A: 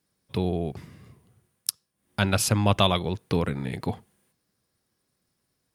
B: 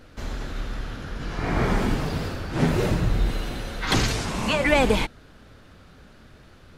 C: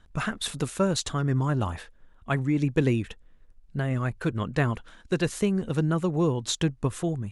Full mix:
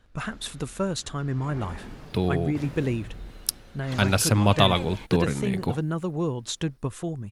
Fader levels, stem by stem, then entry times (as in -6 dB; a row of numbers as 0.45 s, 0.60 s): +1.5 dB, -17.5 dB, -3.0 dB; 1.80 s, 0.00 s, 0.00 s